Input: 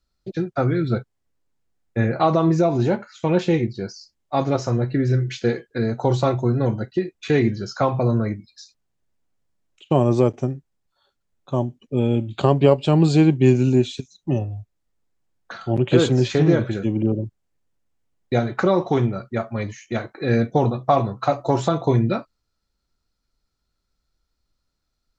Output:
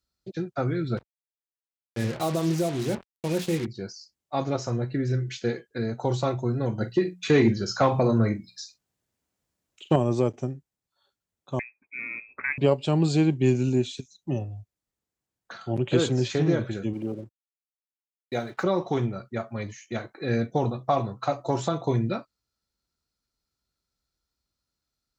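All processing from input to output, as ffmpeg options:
-filter_complex "[0:a]asettb=1/sr,asplit=3[s0][s1][s2];[s0]atrim=end=0.974[s3];[s1]atrim=start=0.97:end=3.66,asetpts=PTS-STARTPTS,afade=t=in:d=0.004:c=qsin,afade=t=out:st=2.686:d=0.004:c=qsin,equalizer=f=1100:t=o:w=1.3:g=-7.5,bandreject=f=60:t=h:w=6,bandreject=f=120:t=h:w=6,bandreject=f=180:t=h:w=6,bandreject=f=240:t=h:w=6,bandreject=f=300:t=h:w=6,acrusher=bits=4:mix=0:aa=0.5[s4];[s2]atrim=start=3.656[s5];[s3][s4]acrossfade=d=0.004:c1=hsin:c2=qsin[s6];[s6][s5]acrossfade=d=0.004:c1=qsin:c2=hsin,asettb=1/sr,asplit=3[s7][s8][s9];[s7]atrim=end=6.784[s10];[s8]atrim=start=6.78:end=9.96,asetpts=PTS-STARTPTS,afade=t=in:d=0.004:c=qsin,afade=t=out:st=3.176:d=0.004:c=qsin,bandreject=f=60:t=h:w=6,bandreject=f=120:t=h:w=6,bandreject=f=180:t=h:w=6,asplit=2[s11][s12];[s12]adelay=44,volume=0.224[s13];[s11][s13]amix=inputs=2:normalize=0,atrim=end_sample=140238,acontrast=65[s14];[s9]atrim=start=9.956[s15];[s10][s14]acrossfade=d=0.004:c1=hsin:c2=qsin[s16];[s16][s15]acrossfade=d=0.004:c1=qsin:c2=hsin,asettb=1/sr,asplit=3[s17][s18][s19];[s17]atrim=end=11.594[s20];[s18]atrim=start=11.59:end=12.58,asetpts=PTS-STARTPTS,afade=t=in:d=0.004:c=qsin,afade=t=out:st=0.986:d=0.004:c=qsin,aderivative,aeval=exprs='0.282*sin(PI/2*4.47*val(0)/0.282)':c=same,lowpass=f=2300:t=q:w=0.5098,lowpass=f=2300:t=q:w=0.6013,lowpass=f=2300:t=q:w=0.9,lowpass=f=2300:t=q:w=2.563,afreqshift=-2700[s21];[s19]atrim=start=12.576[s22];[s20][s21]acrossfade=d=0.004:c1=hsin:c2=qsin[s23];[s23][s22]acrossfade=d=0.004:c1=qsin:c2=hsin,asettb=1/sr,asplit=3[s24][s25][s26];[s24]atrim=end=16.934[s27];[s25]atrim=start=16.93:end=18.64,asetpts=PTS-STARTPTS,afade=t=in:d=0.004:c=qsin,afade=t=out:st=1.706:d=0.004:c=qsin,lowshelf=f=190:g=-11,aeval=exprs='sgn(val(0))*max(abs(val(0))-0.00237,0)':c=same[s28];[s26]atrim=start=18.636[s29];[s27][s28]acrossfade=d=0.004:c1=hsin:c2=qsin[s30];[s30][s29]acrossfade=d=0.004:c1=qsin:c2=hsin,highpass=55,highshelf=f=4800:g=6.5,volume=0.473"

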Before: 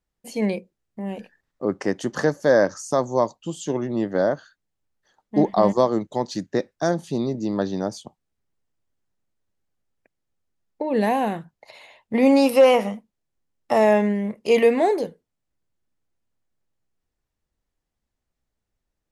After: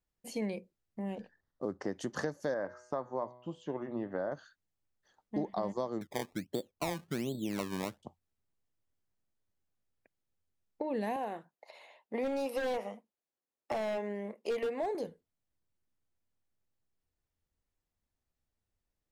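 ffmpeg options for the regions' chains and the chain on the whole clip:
-filter_complex "[0:a]asettb=1/sr,asplit=3[s0][s1][s2];[s0]atrim=end=1.154[s3];[s1]atrim=start=1.15:end=1.93,asetpts=PTS-STARTPTS,afade=t=in:d=0.004:c=qsin,afade=t=out:st=0.776:d=0.004:c=qsin,acrusher=bits=8:mode=log:mix=0:aa=0.000001,lowpass=4700,equalizer=f=2500:w=2.8:g=-11.5[s4];[s2]atrim=start=1.926[s5];[s3][s4]acrossfade=d=0.004:c1=hsin:c2=qsin[s6];[s6][s5]acrossfade=d=0.004:c1=qsin:c2=hsin,asettb=1/sr,asplit=3[s7][s8][s9];[s7]atrim=end=2.544[s10];[s8]atrim=start=2.54:end=4.32,asetpts=PTS-STARTPTS,afade=t=in:d=0.004:c=qsin,afade=t=out:st=1.776:d=0.004:c=qsin,lowpass=1400,tiltshelf=f=860:g=-5.5,bandreject=f=123.4:t=h:w=4,bandreject=f=246.8:t=h:w=4,bandreject=f=370.2:t=h:w=4,bandreject=f=493.6:t=h:w=4,bandreject=f=617:t=h:w=4,bandreject=f=740.4:t=h:w=4,bandreject=f=863.8:t=h:w=4,bandreject=f=987.2:t=h:w=4,bandreject=f=1110.6:t=h:w=4,bandreject=f=1234:t=h:w=4,bandreject=f=1357.4:t=h:w=4,bandreject=f=1480.8:t=h:w=4,bandreject=f=1604.2:t=h:w=4,bandreject=f=1727.6:t=h:w=4,bandreject=f=1851:t=h:w=4,bandreject=f=1974.4:t=h:w=4,bandreject=f=2097.8:t=h:w=4,bandreject=f=2221.2:t=h:w=4,bandreject=f=2344.6:t=h:w=4,bandreject=f=2468:t=h:w=4,bandreject=f=2591.4:t=h:w=4,bandreject=f=2714.8:t=h:w=4,bandreject=f=2838.2:t=h:w=4,bandreject=f=2961.6:t=h:w=4,bandreject=f=3085:t=h:w=4,bandreject=f=3208.4:t=h:w=4,bandreject=f=3331.8:t=h:w=4,bandreject=f=3455.2:t=h:w=4,bandreject=f=3578.6:t=h:w=4,bandreject=f=3702:t=h:w=4,bandreject=f=3825.4:t=h:w=4,bandreject=f=3948.8:t=h:w=4,bandreject=f=4072.2:t=h:w=4,bandreject=f=4195.6:t=h:w=4,bandreject=f=4319:t=h:w=4,bandreject=f=4442.4:t=h:w=4,bandreject=f=4565.8:t=h:w=4[s11];[s9]atrim=start=4.316[s12];[s10][s11]acrossfade=d=0.004:c1=hsin:c2=qsin[s13];[s13][s12]acrossfade=d=0.004:c1=qsin:c2=hsin,asettb=1/sr,asplit=3[s14][s15][s16];[s14]atrim=end=6.014[s17];[s15]atrim=start=6.01:end=8.03,asetpts=PTS-STARTPTS,afade=t=in:d=0.004:c=qsin,afade=t=out:st=2.016:d=0.004:c=qsin,lowpass=f=1300:w=0.5412,lowpass=f=1300:w=1.3066,acrusher=samples=22:mix=1:aa=0.000001:lfo=1:lforange=22:lforate=1.3[s18];[s16]atrim=start=8.026[s19];[s17][s18]acrossfade=d=0.004:c1=hsin:c2=qsin[s20];[s20][s19]acrossfade=d=0.004:c1=qsin:c2=hsin,asettb=1/sr,asplit=3[s21][s22][s23];[s21]atrim=end=11.164[s24];[s22]atrim=start=11.16:end=14.95,asetpts=PTS-STARTPTS,afade=t=in:d=0.004:c=qsin,afade=t=out:st=3.786:d=0.004:c=qsin,highpass=470,aeval=exprs='0.178*(abs(mod(val(0)/0.178+3,4)-2)-1)':c=same,tiltshelf=f=920:g=5[s25];[s23]atrim=start=14.946[s26];[s24][s25]acrossfade=d=0.004:c1=hsin:c2=qsin[s27];[s27][s26]acrossfade=d=0.004:c1=qsin:c2=hsin,equalizer=f=87:w=7.6:g=7.5,acompressor=threshold=0.0501:ratio=4,volume=0.473"

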